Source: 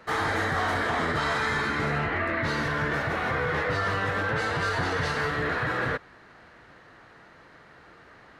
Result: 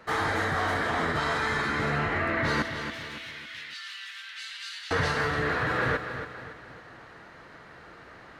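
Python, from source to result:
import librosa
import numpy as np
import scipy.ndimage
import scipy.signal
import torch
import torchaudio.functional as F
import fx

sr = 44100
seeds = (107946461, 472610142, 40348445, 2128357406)

y = fx.ladder_highpass(x, sr, hz=2400.0, resonance_pct=35, at=(2.62, 4.91))
y = fx.echo_feedback(y, sr, ms=279, feedback_pct=43, wet_db=-11)
y = fx.rider(y, sr, range_db=4, speed_s=0.5)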